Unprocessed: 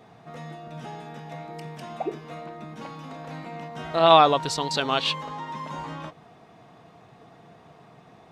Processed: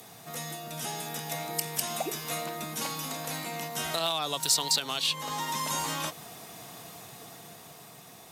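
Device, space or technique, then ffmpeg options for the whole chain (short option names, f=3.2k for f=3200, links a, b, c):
FM broadcast chain: -filter_complex "[0:a]highpass=60,dynaudnorm=f=200:g=13:m=4.5dB,acrossover=split=230|560|4100[a][b][c][d];[a]acompressor=threshold=-42dB:ratio=4[e];[b]acompressor=threshold=-40dB:ratio=4[f];[c]acompressor=threshold=-31dB:ratio=4[g];[d]acompressor=threshold=-44dB:ratio=4[h];[e][f][g][h]amix=inputs=4:normalize=0,aemphasis=mode=production:type=75fm,alimiter=limit=-20dB:level=0:latency=1:release=262,asoftclip=type=hard:threshold=-22dB,lowpass=f=15k:w=0.5412,lowpass=f=15k:w=1.3066,aemphasis=mode=production:type=75fm"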